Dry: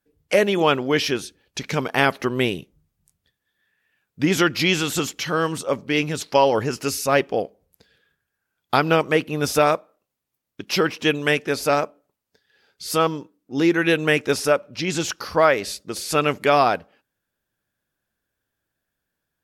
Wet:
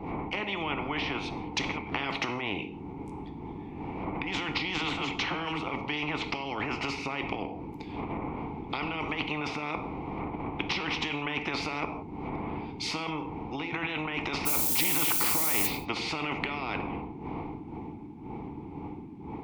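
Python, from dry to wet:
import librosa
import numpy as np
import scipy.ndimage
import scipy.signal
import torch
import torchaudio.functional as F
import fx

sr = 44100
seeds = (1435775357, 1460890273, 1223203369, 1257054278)

y = fx.fade_in_head(x, sr, length_s=1.82)
y = fx.dmg_wind(y, sr, seeds[0], corner_hz=170.0, level_db=-29.0)
y = fx.over_compress(y, sr, threshold_db=-26.0, ratio=-1.0)
y = fx.dispersion(y, sr, late='lows', ms=49.0, hz=340.0, at=(4.78, 5.63))
y = fx.env_lowpass_down(y, sr, base_hz=900.0, full_db=-17.0)
y = fx.vowel_filter(y, sr, vowel='u')
y = fx.dmg_noise_colour(y, sr, seeds[1], colour='violet', level_db=-51.0, at=(14.45, 15.66), fade=0.02)
y = fx.rev_gated(y, sr, seeds[2], gate_ms=200, shape='falling', drr_db=10.0)
y = fx.spectral_comp(y, sr, ratio=4.0)
y = y * 10.0 ** (8.0 / 20.0)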